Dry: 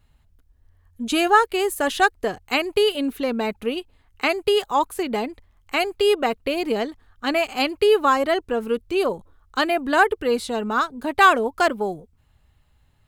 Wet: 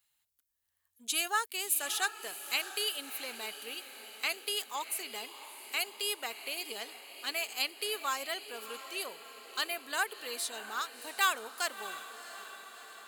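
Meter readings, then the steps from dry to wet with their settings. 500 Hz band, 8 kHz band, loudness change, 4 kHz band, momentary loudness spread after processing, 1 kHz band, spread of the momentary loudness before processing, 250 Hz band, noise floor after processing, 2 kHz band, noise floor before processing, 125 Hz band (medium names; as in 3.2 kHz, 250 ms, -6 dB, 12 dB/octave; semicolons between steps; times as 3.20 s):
-23.0 dB, +1.5 dB, -13.0 dB, -6.0 dB, 14 LU, -16.5 dB, 11 LU, -27.0 dB, -80 dBFS, -11.5 dB, -61 dBFS, no reading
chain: differentiator; echo that smears into a reverb 674 ms, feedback 60%, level -12.5 dB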